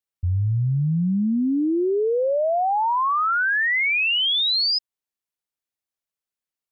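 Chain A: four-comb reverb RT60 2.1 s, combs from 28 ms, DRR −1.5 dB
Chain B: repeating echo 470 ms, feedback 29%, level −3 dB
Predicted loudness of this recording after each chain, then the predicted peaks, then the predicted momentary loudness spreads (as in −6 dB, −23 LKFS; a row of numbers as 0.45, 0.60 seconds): −17.0, −19.0 LKFS; −5.5, −12.0 dBFS; 9, 9 LU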